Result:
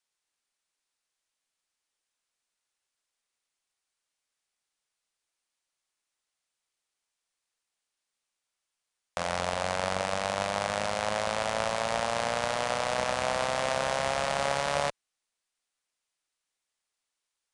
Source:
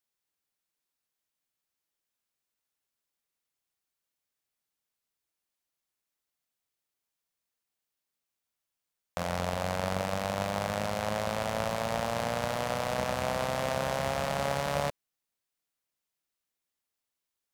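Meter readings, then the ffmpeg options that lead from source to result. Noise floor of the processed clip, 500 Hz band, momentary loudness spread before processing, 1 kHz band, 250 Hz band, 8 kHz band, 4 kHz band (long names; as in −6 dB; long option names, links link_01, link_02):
below −85 dBFS, +1.5 dB, 2 LU, +3.0 dB, −4.0 dB, +4.0 dB, +4.5 dB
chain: -af "equalizer=frequency=120:width=0.33:gain=-10,aresample=22050,aresample=44100,volume=4.5dB"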